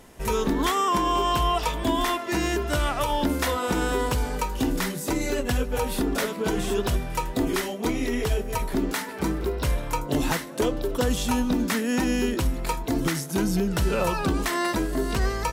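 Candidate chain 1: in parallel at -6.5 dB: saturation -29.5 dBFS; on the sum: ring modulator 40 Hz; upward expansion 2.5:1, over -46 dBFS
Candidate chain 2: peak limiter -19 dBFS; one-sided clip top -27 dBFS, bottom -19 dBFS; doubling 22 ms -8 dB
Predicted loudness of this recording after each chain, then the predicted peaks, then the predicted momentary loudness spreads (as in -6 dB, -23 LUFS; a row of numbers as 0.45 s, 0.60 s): -33.0 LUFS, -29.0 LUFS; -14.5 dBFS, -16.0 dBFS; 6 LU, 3 LU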